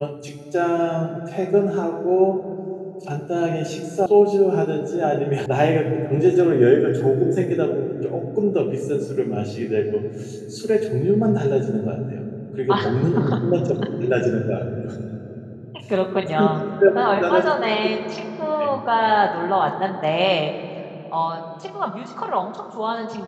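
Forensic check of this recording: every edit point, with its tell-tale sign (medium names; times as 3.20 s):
4.06 s: sound stops dead
5.46 s: sound stops dead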